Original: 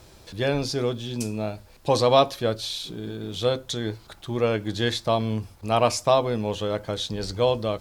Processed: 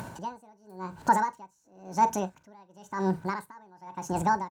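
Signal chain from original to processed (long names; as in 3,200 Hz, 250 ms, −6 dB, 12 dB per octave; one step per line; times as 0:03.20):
spectral tilt −1.5 dB per octave
brickwall limiter −15 dBFS, peak gain reduction 11 dB
single-tap delay 75 ms −17 dB
upward compression, threshold −28 dBFS
high-pass filter 70 Hz 12 dB per octave
low-shelf EQ 360 Hz +4.5 dB
hollow resonant body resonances 540/880 Hz, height 14 dB, ringing for 70 ms
wrong playback speed 45 rpm record played at 78 rpm
tremolo with a sine in dB 0.95 Hz, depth 32 dB
level −4 dB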